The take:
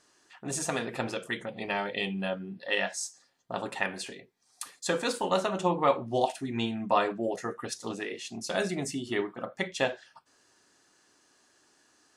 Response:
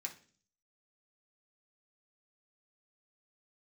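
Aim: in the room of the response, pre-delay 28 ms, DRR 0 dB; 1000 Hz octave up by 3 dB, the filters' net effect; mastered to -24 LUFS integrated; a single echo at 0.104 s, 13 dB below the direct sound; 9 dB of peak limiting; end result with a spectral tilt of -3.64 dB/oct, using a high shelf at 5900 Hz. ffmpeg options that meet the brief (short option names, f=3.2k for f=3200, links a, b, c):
-filter_complex "[0:a]equalizer=f=1k:t=o:g=4,highshelf=f=5.9k:g=-5,alimiter=limit=-18dB:level=0:latency=1,aecho=1:1:104:0.224,asplit=2[a][b];[1:a]atrim=start_sample=2205,adelay=28[c];[b][c]afir=irnorm=-1:irlink=0,volume=2dB[d];[a][d]amix=inputs=2:normalize=0,volume=6dB"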